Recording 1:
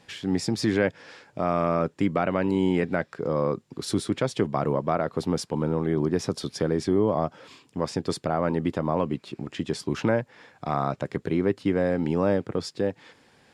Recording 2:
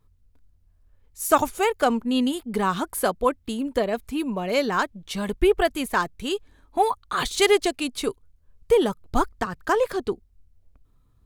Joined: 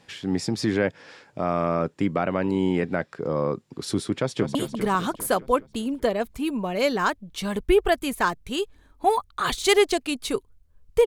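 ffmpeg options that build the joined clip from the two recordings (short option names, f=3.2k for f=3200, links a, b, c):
-filter_complex "[0:a]apad=whole_dur=11.06,atrim=end=11.06,atrim=end=4.552[a];[1:a]atrim=start=2.278:end=8.79[b];[a][b]acrossfade=d=0.004:c1=hsin:c2=hsin,asplit=2[c][d];[d]afade=t=in:st=4.15:d=0.01,afade=t=out:st=4.55:d=0.01,aecho=0:1:200|400|600|800|1000|1200|1400|1600|1800:0.421697|0.274103|0.178167|0.115808|0.0752755|0.048929|0.0318039|0.0206725|0.0134371[e];[c][e]amix=inputs=2:normalize=0"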